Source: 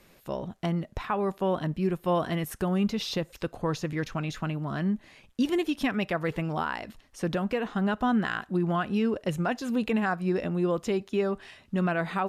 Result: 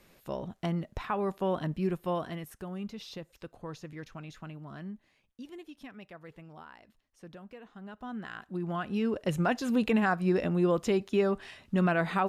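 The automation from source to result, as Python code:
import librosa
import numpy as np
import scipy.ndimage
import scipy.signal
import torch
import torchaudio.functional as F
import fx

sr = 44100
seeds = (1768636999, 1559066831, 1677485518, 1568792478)

y = fx.gain(x, sr, db=fx.line((1.93, -3.0), (2.57, -12.5), (4.75, -12.5), (5.42, -19.5), (7.81, -19.5), (8.46, -9.5), (9.43, 0.5)))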